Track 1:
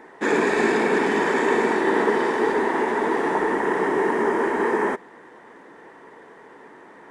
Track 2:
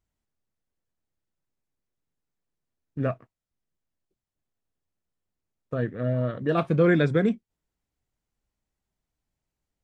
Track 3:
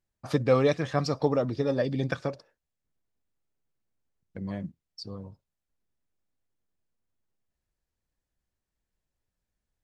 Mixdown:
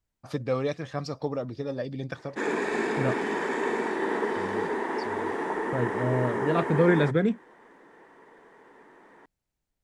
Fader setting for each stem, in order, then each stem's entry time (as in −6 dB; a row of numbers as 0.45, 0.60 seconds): −8.0, −1.5, −5.5 decibels; 2.15, 0.00, 0.00 seconds